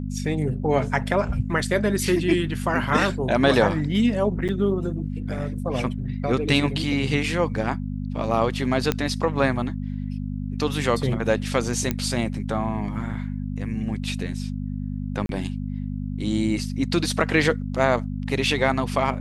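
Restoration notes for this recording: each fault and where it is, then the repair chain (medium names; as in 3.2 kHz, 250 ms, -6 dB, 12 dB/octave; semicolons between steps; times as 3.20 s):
hum 50 Hz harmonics 5 -29 dBFS
4.48–4.49 s: dropout 8.2 ms
8.92 s: pop -8 dBFS
11.91 s: pop -9 dBFS
15.26–15.29 s: dropout 32 ms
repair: de-click; de-hum 50 Hz, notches 5; interpolate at 4.48 s, 8.2 ms; interpolate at 15.26 s, 32 ms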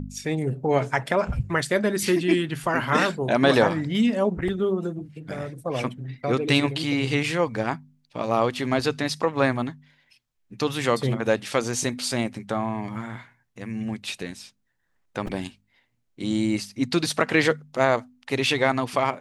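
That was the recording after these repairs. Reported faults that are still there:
nothing left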